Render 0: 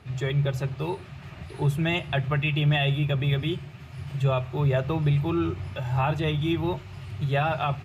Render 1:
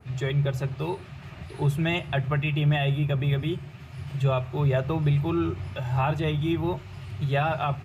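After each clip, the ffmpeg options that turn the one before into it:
-af "adynamicequalizer=threshold=0.00708:dfrequency=3600:dqfactor=0.88:tfrequency=3600:tqfactor=0.88:attack=5:release=100:ratio=0.375:range=3:mode=cutabove:tftype=bell"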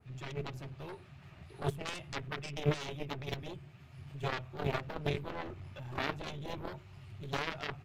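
-af "aeval=exprs='0.2*(cos(1*acos(clip(val(0)/0.2,-1,1)))-cos(1*PI/2))+0.1*(cos(3*acos(clip(val(0)/0.2,-1,1)))-cos(3*PI/2))+0.00447*(cos(5*acos(clip(val(0)/0.2,-1,1)))-cos(5*PI/2))+0.00447*(cos(6*acos(clip(val(0)/0.2,-1,1)))-cos(6*PI/2))':c=same,volume=-4dB"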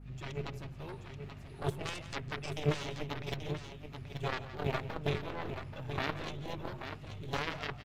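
-filter_complex "[0:a]aeval=exprs='val(0)+0.00355*(sin(2*PI*50*n/s)+sin(2*PI*2*50*n/s)/2+sin(2*PI*3*50*n/s)/3+sin(2*PI*4*50*n/s)/4+sin(2*PI*5*50*n/s)/5)':c=same,asplit=2[a][b];[b]aecho=0:1:153|170|832:0.1|0.188|0.376[c];[a][c]amix=inputs=2:normalize=0"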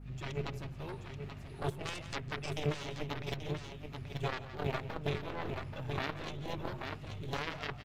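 -af "alimiter=limit=-22dB:level=0:latency=1:release=483,volume=1.5dB"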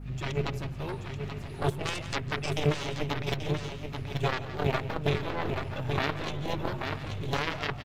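-af "aecho=1:1:971:0.158,volume=7.5dB"

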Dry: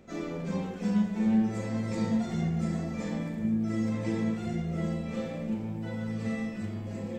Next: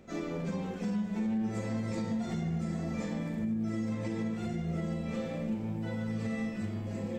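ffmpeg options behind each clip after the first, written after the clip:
-af "alimiter=level_in=1.5dB:limit=-24dB:level=0:latency=1:release=152,volume=-1.5dB"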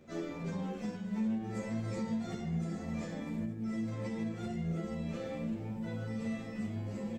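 -filter_complex "[0:a]asplit=2[a][b];[b]adelay=10.6,afreqshift=2.4[c];[a][c]amix=inputs=2:normalize=1"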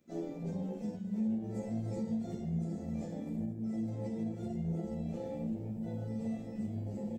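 -af "afwtdn=0.0112,crystalizer=i=3:c=0"

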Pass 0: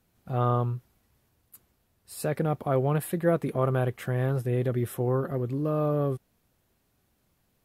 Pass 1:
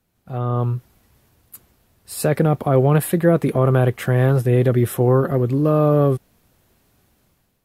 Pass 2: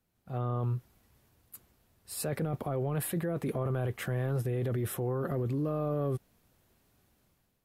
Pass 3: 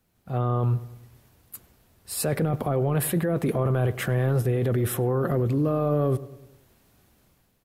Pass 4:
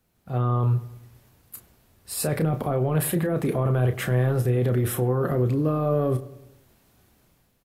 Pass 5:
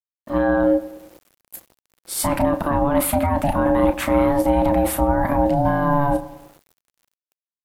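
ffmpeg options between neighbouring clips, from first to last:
-filter_complex "[0:a]acrossover=split=420[a][b];[b]alimiter=limit=-24dB:level=0:latency=1:release=15[c];[a][c]amix=inputs=2:normalize=0,dynaudnorm=f=250:g=5:m=11dB"
-af "alimiter=limit=-16.5dB:level=0:latency=1:release=10,volume=-8.5dB"
-filter_complex "[0:a]asplit=2[a][b];[b]adelay=101,lowpass=f=1.7k:p=1,volume=-16dB,asplit=2[c][d];[d]adelay=101,lowpass=f=1.7k:p=1,volume=0.53,asplit=2[e][f];[f]adelay=101,lowpass=f=1.7k:p=1,volume=0.53,asplit=2[g][h];[h]adelay=101,lowpass=f=1.7k:p=1,volume=0.53,asplit=2[i][j];[j]adelay=101,lowpass=f=1.7k:p=1,volume=0.53[k];[a][c][e][g][i][k]amix=inputs=6:normalize=0,volume=8dB"
-filter_complex "[0:a]asplit=2[a][b];[b]adelay=32,volume=-8.5dB[c];[a][c]amix=inputs=2:normalize=0"
-af "aeval=exprs='val(0)*gte(abs(val(0)),0.00282)':c=same,aeval=exprs='val(0)*sin(2*PI*430*n/s)':c=same,volume=7.5dB"

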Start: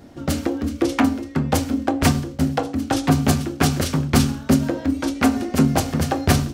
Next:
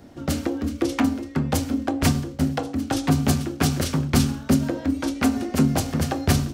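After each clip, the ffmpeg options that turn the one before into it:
-filter_complex "[0:a]acrossover=split=340|3000[a][b][c];[b]acompressor=threshold=-25dB:ratio=2[d];[a][d][c]amix=inputs=3:normalize=0,volume=-2dB"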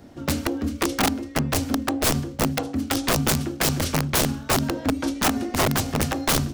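-af "aeval=exprs='(mod(5.31*val(0)+1,2)-1)/5.31':c=same"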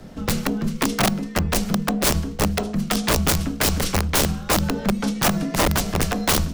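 -filter_complex "[0:a]asplit=2[a][b];[b]alimiter=level_in=2.5dB:limit=-24dB:level=0:latency=1:release=215,volume=-2.5dB,volume=0dB[c];[a][c]amix=inputs=2:normalize=0,afreqshift=-68"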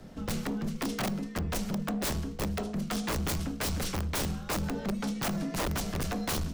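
-af "volume=20.5dB,asoftclip=hard,volume=-20.5dB,volume=-7.5dB"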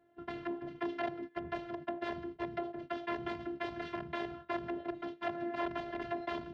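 -af "afftfilt=real='hypot(re,im)*cos(PI*b)':imag='0':win_size=512:overlap=0.75,agate=range=-14dB:threshold=-41dB:ratio=16:detection=peak,highpass=140,equalizer=f=160:t=q:w=4:g=7,equalizer=f=300:t=q:w=4:g=-7,equalizer=f=1.2k:t=q:w=4:g=-8,equalizer=f=2.4k:t=q:w=4:g=-7,lowpass=f=2.6k:w=0.5412,lowpass=f=2.6k:w=1.3066,volume=3.5dB"

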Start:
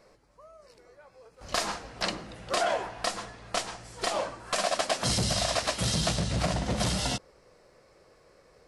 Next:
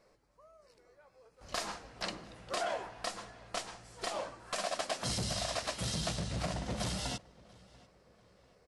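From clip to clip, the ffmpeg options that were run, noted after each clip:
-filter_complex "[0:a]asplit=2[a][b];[b]adelay=690,lowpass=f=4.4k:p=1,volume=-23dB,asplit=2[c][d];[d]adelay=690,lowpass=f=4.4k:p=1,volume=0.45,asplit=2[e][f];[f]adelay=690,lowpass=f=4.4k:p=1,volume=0.45[g];[a][c][e][g]amix=inputs=4:normalize=0,volume=-8dB"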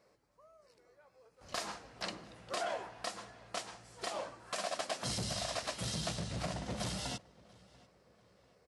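-af "highpass=68,volume=-2dB"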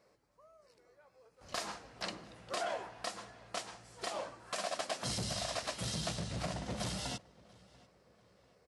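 -af anull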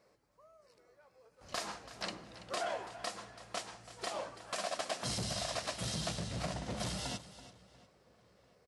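-af "aecho=1:1:332:0.178"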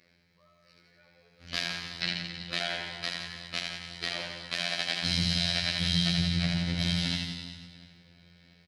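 -af "equalizer=f=125:t=o:w=1:g=10,equalizer=f=250:t=o:w=1:g=5,equalizer=f=500:t=o:w=1:g=-5,equalizer=f=1k:t=o:w=1:g=-11,equalizer=f=2k:t=o:w=1:g=11,equalizer=f=4k:t=o:w=1:g=11,equalizer=f=8k:t=o:w=1:g=-10,afftfilt=real='hypot(re,im)*cos(PI*b)':imag='0':win_size=2048:overlap=0.75,aecho=1:1:80|168|264.8|371.3|488.4:0.631|0.398|0.251|0.158|0.1,volume=5dB"

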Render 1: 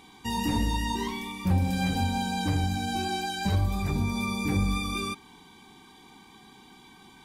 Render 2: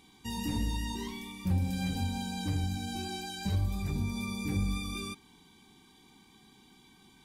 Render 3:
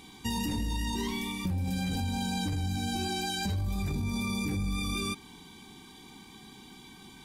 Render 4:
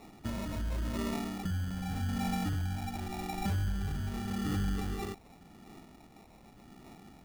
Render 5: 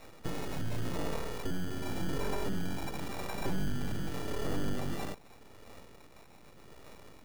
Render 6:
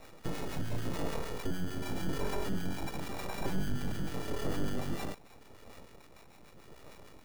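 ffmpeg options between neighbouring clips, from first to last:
-af "equalizer=f=970:t=o:w=2.6:g=-7.5,volume=-4dB"
-af "alimiter=level_in=5.5dB:limit=-24dB:level=0:latency=1:release=11,volume=-5.5dB,acompressor=threshold=-37dB:ratio=6,volume=9dB"
-af "aphaser=in_gain=1:out_gain=1:delay=1:decay=0.54:speed=0.87:type=sinusoidal,acrusher=samples=28:mix=1:aa=0.000001,volume=-7dB"
-filter_complex "[0:a]acrossover=split=950[a][b];[a]aeval=exprs='abs(val(0))':c=same[c];[b]alimiter=level_in=8dB:limit=-24dB:level=0:latency=1:release=149,volume=-8dB[d];[c][d]amix=inputs=2:normalize=0,volume=2.5dB"
-filter_complex "[0:a]acrossover=split=1000[a][b];[a]aeval=exprs='val(0)*(1-0.5/2+0.5/2*cos(2*PI*6.7*n/s))':c=same[c];[b]aeval=exprs='val(0)*(1-0.5/2-0.5/2*cos(2*PI*6.7*n/s))':c=same[d];[c][d]amix=inputs=2:normalize=0,volume=2dB"

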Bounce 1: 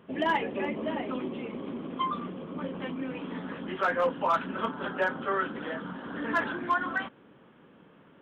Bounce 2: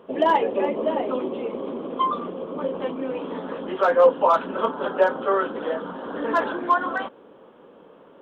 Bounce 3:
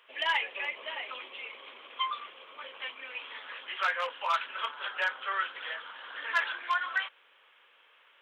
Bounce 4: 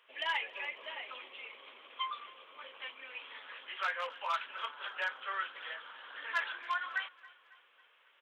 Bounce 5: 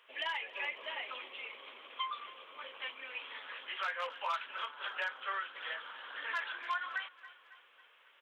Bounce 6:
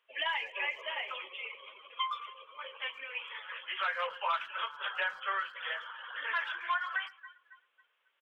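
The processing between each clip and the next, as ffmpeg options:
-af "equalizer=f=125:t=o:w=1:g=-9,equalizer=f=500:t=o:w=1:g=10,equalizer=f=1k:t=o:w=1:g=5,equalizer=f=2k:t=o:w=1:g=-6,equalizer=f=4k:t=o:w=1:g=3,volume=2.5dB"
-af "highpass=f=2.2k:t=q:w=2.6"
-af "aecho=1:1:274|548|822|1096:0.0841|0.0429|0.0219|0.0112,volume=-5.5dB"
-af "alimiter=level_in=5.5dB:limit=-24dB:level=0:latency=1:release=273,volume=-5.5dB,volume=2.5dB"
-filter_complex "[0:a]aeval=exprs='0.0473*(cos(1*acos(clip(val(0)/0.0473,-1,1)))-cos(1*PI/2))+0.000422*(cos(4*acos(clip(val(0)/0.0473,-1,1)))-cos(4*PI/2))':c=same,afftdn=nr=17:nf=-49,asplit=2[a][b];[b]adelay=110,highpass=300,lowpass=3.4k,asoftclip=type=hard:threshold=-36dB,volume=-20dB[c];[a][c]amix=inputs=2:normalize=0,volume=4dB"

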